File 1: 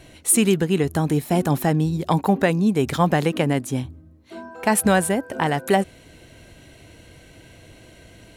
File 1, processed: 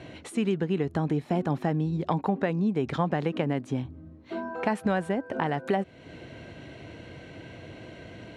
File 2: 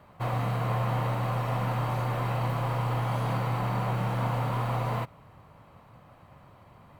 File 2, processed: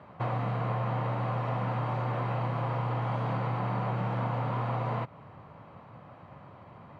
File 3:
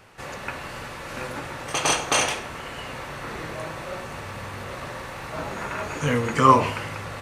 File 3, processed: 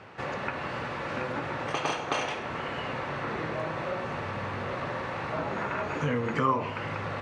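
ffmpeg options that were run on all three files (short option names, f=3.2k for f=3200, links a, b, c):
-af "acompressor=threshold=-34dB:ratio=2.5,highpass=100,lowpass=5.1k,highshelf=f=3.5k:g=-10.5,volume=5dB"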